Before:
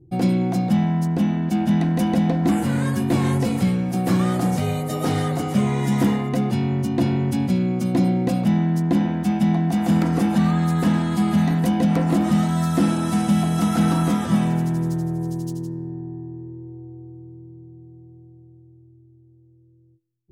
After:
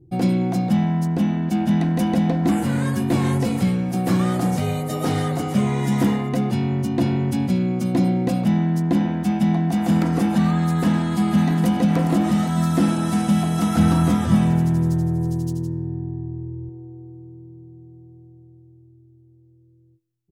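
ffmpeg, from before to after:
-filter_complex "[0:a]asplit=2[a][b];[b]afade=t=in:st=10.93:d=0.01,afade=t=out:st=11.66:d=0.01,aecho=0:1:410|820|1230|1640|2050|2460|2870|3280|3690:0.398107|0.25877|0.1682|0.10933|0.0710646|0.046192|0.0300248|0.0195161|0.0126855[c];[a][c]amix=inputs=2:normalize=0,asettb=1/sr,asplit=3[d][e][f];[d]atrim=end=13.764[g];[e]atrim=start=13.76:end=16.69,asetpts=PTS-STARTPTS,afade=t=in:d=0.004:c=qsin,afade=t=out:st=2.926:d=0.004:c=qsin,equalizer=f=85:w=1.5:g=14[h];[f]atrim=start=16.686[i];[g][h]acrossfade=d=0.004:c1=hsin:c2=qsin[j];[j][i]acrossfade=d=0.004:c1=qsin:c2=hsin"

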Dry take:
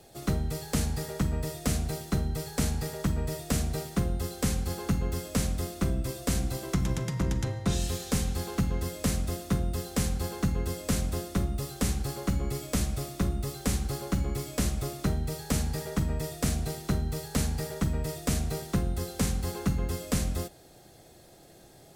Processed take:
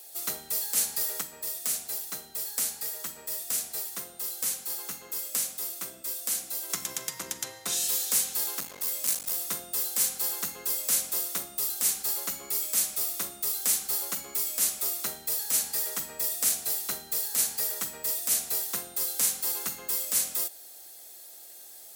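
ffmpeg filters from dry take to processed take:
-filter_complex "[0:a]asettb=1/sr,asplit=3[a][b][c];[a]atrim=end=1.214[d];[b]atrim=start=1.21:end=6.7,asetpts=PTS-STARTPTS,afade=t=in:d=0.004:c=qsin,afade=t=out:st=5.486:d=0.004:c=qsin,flanger=delay=6.2:depth=7.6:regen=-73:speed=1.1:shape=sinusoidal[e];[c]atrim=start=6.696[f];[d][e]acrossfade=d=0.004:c1=hsin:c2=qsin[g];[g][f]acrossfade=d=0.004:c1=qsin:c2=hsin,asettb=1/sr,asplit=3[h][i][j];[h]atrim=end=8.584[k];[i]atrim=start=8.58:end=9.5,asetpts=PTS-STARTPTS,afade=t=in:d=0.004:c=qsin,afade=t=out:st=0.916:d=0.004:c=qsin,aeval=exprs='clip(val(0),-1,0.0178)':c=same[l];[j]atrim=start=9.496[m];[k][l]acrossfade=d=0.004:c1=hsin:c2=qsin[n];[n][m]acrossfade=d=0.004:c1=qsin:c2=hsin,highpass=f=600:p=1,aemphasis=mode=production:type=riaa,alimiter=level_in=7dB:limit=-1dB:release=50:level=0:latency=1,volume=-8.5dB"

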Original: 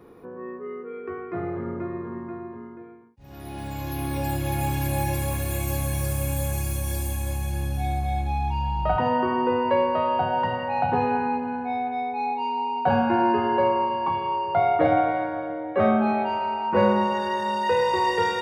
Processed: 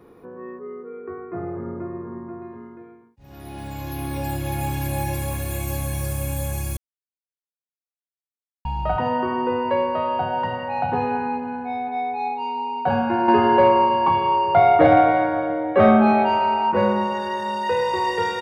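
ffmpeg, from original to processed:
-filter_complex "[0:a]asettb=1/sr,asplit=3[a][b][c];[a]atrim=end=0.594[d];[b]atrim=start=0.59:end=2.42,asetpts=PTS-STARTPTS,afade=t=in:d=0.004:c=qsin,afade=t=out:st=1.826:d=0.004:c=qsin,lowpass=1.4k[e];[c]atrim=start=2.416[f];[d][e]acrossfade=d=0.004:c1=hsin:c2=qsin[g];[g][f]acrossfade=d=0.004:c1=qsin:c2=hsin,asplit=2[h][i];[i]afade=t=in:st=11.61:d=0.01,afade=t=out:st=12.01:d=0.01,aecho=0:1:270|540|810|1080:0.421697|0.147594|0.0516578|0.0180802[j];[h][j]amix=inputs=2:normalize=0,asettb=1/sr,asplit=3[k][l][m];[k]atrim=end=13.284[n];[l]atrim=start=13.28:end=16.72,asetpts=PTS-STARTPTS,afade=t=in:d=0.004:c=qsin,afade=t=out:st=3.436:d=0.004:c=qsin,acontrast=78[o];[m]atrim=start=16.716[p];[n][o]acrossfade=d=0.004:c1=hsin:c2=qsin[q];[q][p]acrossfade=d=0.004:c1=qsin:c2=hsin,asplit=3[r][s][t];[r]atrim=end=6.77,asetpts=PTS-STARTPTS,afade=t=out:st=6.766:d=0.004:c=hsin[u];[s]atrim=start=6.77:end=8.65,asetpts=PTS-STARTPTS,volume=0[v];[t]atrim=start=8.65,asetpts=PTS-STARTPTS,afade=t=in:d=0.004:c=hsin[w];[u][v][w]concat=n=3:v=0:a=1"

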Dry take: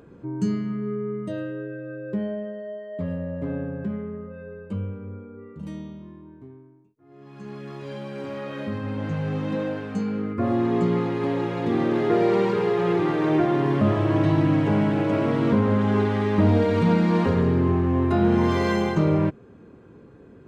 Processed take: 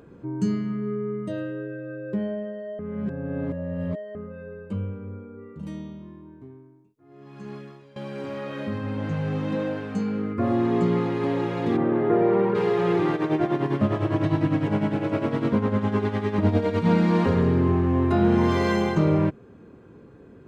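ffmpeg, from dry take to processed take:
-filter_complex "[0:a]asplit=3[a][b][c];[a]afade=t=out:st=11.76:d=0.02[d];[b]lowpass=1.6k,afade=t=in:st=11.76:d=0.02,afade=t=out:st=12.54:d=0.02[e];[c]afade=t=in:st=12.54:d=0.02[f];[d][e][f]amix=inputs=3:normalize=0,asplit=3[g][h][i];[g]afade=t=out:st=13.15:d=0.02[j];[h]tremolo=f=9.9:d=0.67,afade=t=in:st=13.15:d=0.02,afade=t=out:st=16.86:d=0.02[k];[i]afade=t=in:st=16.86:d=0.02[l];[j][k][l]amix=inputs=3:normalize=0,asplit=4[m][n][o][p];[m]atrim=end=2.792[q];[n]atrim=start=2.788:end=4.152,asetpts=PTS-STARTPTS,areverse[r];[o]atrim=start=4.148:end=7.96,asetpts=PTS-STARTPTS,afade=t=out:st=3.402:d=0.41:c=qua:silence=0.125893[s];[p]atrim=start=7.96,asetpts=PTS-STARTPTS,afade=t=in:d=0.004:c=hsin:silence=0.125893[t];[q][r]acrossfade=d=0.004:c1=hsin:c2=hsin[u];[s][t]concat=n=2:v=0:a=1[v];[u][v]acrossfade=d=0.004:c1=hsin:c2=hsin"

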